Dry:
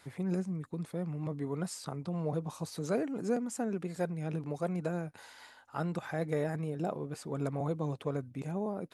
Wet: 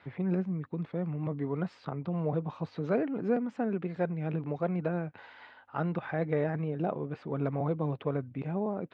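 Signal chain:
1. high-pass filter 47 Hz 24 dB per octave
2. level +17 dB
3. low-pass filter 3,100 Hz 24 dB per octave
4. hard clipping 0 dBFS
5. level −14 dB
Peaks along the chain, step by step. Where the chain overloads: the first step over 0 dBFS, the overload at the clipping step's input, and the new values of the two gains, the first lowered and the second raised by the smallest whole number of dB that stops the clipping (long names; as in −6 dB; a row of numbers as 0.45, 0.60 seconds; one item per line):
−19.5, −2.5, −2.5, −2.5, −16.5 dBFS
no step passes full scale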